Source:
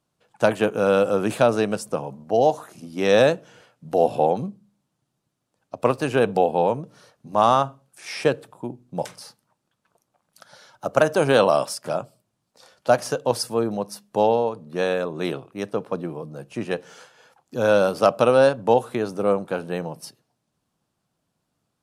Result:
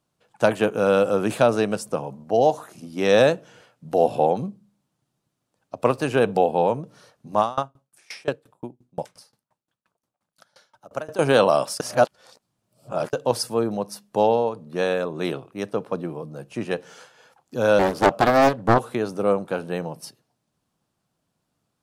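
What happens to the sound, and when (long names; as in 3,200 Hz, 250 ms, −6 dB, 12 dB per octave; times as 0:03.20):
0:07.40–0:11.19: tremolo with a ramp in dB decaying 5.7 Hz, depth 26 dB
0:11.80–0:13.13: reverse
0:17.79–0:18.80: highs frequency-modulated by the lows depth 0.88 ms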